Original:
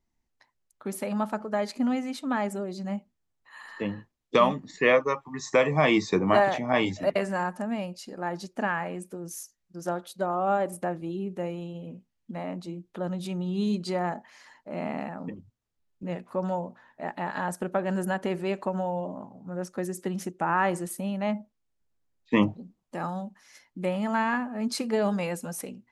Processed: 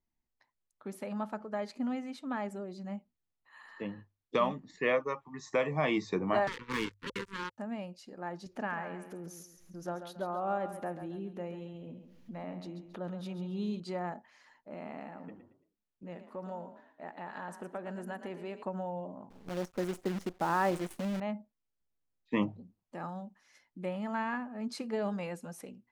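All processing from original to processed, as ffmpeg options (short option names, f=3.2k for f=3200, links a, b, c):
-filter_complex "[0:a]asettb=1/sr,asplit=3[a][b][c];[a]atrim=end=6.474[d];[b]atrim=start=6.47:end=7.58,asetpts=PTS-STARTPTS,afade=t=in:d=0.004:c=qsin,afade=t=out:st=1.106:d=0.004:c=qsin,acompressor=mode=upward:threshold=-29dB:ratio=2.5:attack=3.2:release=140:knee=2.83:detection=peak,acrusher=bits=3:mix=0:aa=0.5,asuperstop=centerf=680:order=12:qfactor=1.8[e];[c]atrim=start=7.576[f];[d][e]acrossfade=d=0.004:c1=hsin:c2=qsin[g];[g][f]acrossfade=d=0.004:c1=qsin:c2=hsin,asettb=1/sr,asplit=3[h][i][j];[h]atrim=end=8.464[k];[i]atrim=start=8.46:end=13.8,asetpts=PTS-STARTPTS,afade=t=in:d=0.004:c=qsin,afade=t=out:st=5.336:d=0.004:c=qsin,equalizer=f=8.1k:w=4.6:g=-8.5,acompressor=mode=upward:threshold=-30dB:ratio=2.5:attack=3.2:release=140:knee=2.83:detection=peak,aecho=1:1:137|274|411|548:0.316|0.114|0.041|0.0148,atrim=end_sample=235494[l];[j]atrim=start=13.796[m];[k][l]acrossfade=d=0.004:c1=hsin:c2=qsin[n];[n][m]acrossfade=d=0.004:c1=qsin:c2=hsin,asettb=1/sr,asplit=3[o][p][q];[o]atrim=end=14.744[r];[p]atrim=start=14.74:end=18.63,asetpts=PTS-STARTPTS,afade=t=in:d=0.004:c=qsin,afade=t=out:st=3.886:d=0.004:c=qsin,lowshelf=f=130:g=-8.5,acompressor=threshold=-34dB:ratio=1.5:attack=3.2:release=140:knee=1:detection=peak,asplit=4[s][t][u][v];[t]adelay=113,afreqshift=37,volume=-11dB[w];[u]adelay=226,afreqshift=74,volume=-20.9dB[x];[v]adelay=339,afreqshift=111,volume=-30.8dB[y];[s][w][x][y]amix=inputs=4:normalize=0,atrim=end_sample=171549[z];[q]atrim=start=18.626[aa];[r][z]acrossfade=d=0.004:c1=hsin:c2=qsin[ab];[ab][aa]acrossfade=d=0.004:c1=qsin:c2=hsin,asettb=1/sr,asplit=3[ac][ad][ae];[ac]atrim=end=19.304[af];[ad]atrim=start=19.3:end=21.2,asetpts=PTS-STARTPTS,afade=t=in:d=0.004:c=qsin,afade=t=out:st=1.896:d=0.004:c=qsin,equalizer=f=400:w=0.44:g=6,acrusher=bits=6:dc=4:mix=0:aa=0.000001[ag];[ae]atrim=start=21.196[ah];[af][ag]acrossfade=d=0.004:c1=hsin:c2=qsin[ai];[ai][ah]acrossfade=d=0.004:c1=qsin:c2=hsin,highshelf=f=6.8k:g=-9.5,bandreject=f=50:t=h:w=6,bandreject=f=100:t=h:w=6,volume=-8dB"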